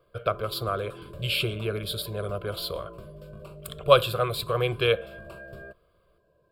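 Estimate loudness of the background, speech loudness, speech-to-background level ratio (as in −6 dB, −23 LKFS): −44.5 LKFS, −27.0 LKFS, 17.5 dB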